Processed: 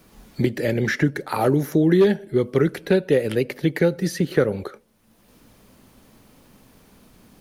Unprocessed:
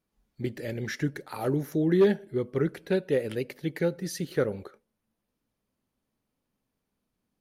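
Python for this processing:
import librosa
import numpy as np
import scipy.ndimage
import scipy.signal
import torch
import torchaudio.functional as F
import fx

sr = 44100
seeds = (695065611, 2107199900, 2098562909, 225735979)

y = fx.band_squash(x, sr, depth_pct=70)
y = y * 10.0 ** (8.0 / 20.0)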